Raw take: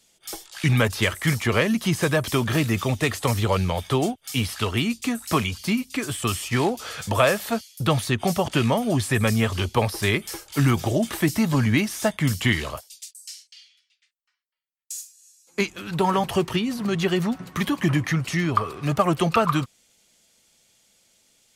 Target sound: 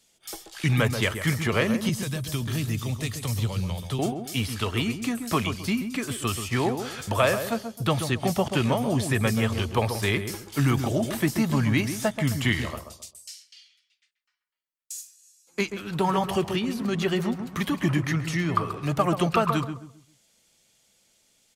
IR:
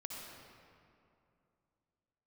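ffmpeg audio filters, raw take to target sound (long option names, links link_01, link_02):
-filter_complex "[0:a]asettb=1/sr,asplit=3[link_01][link_02][link_03];[link_01]atrim=end=1.894[link_04];[link_02]atrim=start=1.89:end=3.99,asetpts=PTS-STARTPTS,afade=type=in:duration=0.004:curve=qsin,afade=type=out:start_time=2.096:duration=0.004:curve=qsin,acrossover=split=220|3000[link_05][link_06][link_07];[link_06]acompressor=threshold=-36dB:ratio=5[link_08];[link_05][link_08][link_07]amix=inputs=3:normalize=0[link_09];[link_03]atrim=start=3.986[link_10];[link_04][link_09]acrossfade=duration=0.004:curve1=hsin:curve2=qsin[link_11];[link_11][link_10]acrossfade=duration=0.004:curve1=qsin:curve2=hsin,asplit=2[link_12][link_13];[link_13]adelay=133,lowpass=frequency=1100:poles=1,volume=-7dB,asplit=2[link_14][link_15];[link_15]adelay=133,lowpass=frequency=1100:poles=1,volume=0.32,asplit=2[link_16][link_17];[link_17]adelay=133,lowpass=frequency=1100:poles=1,volume=0.32,asplit=2[link_18][link_19];[link_19]adelay=133,lowpass=frequency=1100:poles=1,volume=0.32[link_20];[link_12][link_14][link_16][link_18][link_20]amix=inputs=5:normalize=0,volume=-3dB"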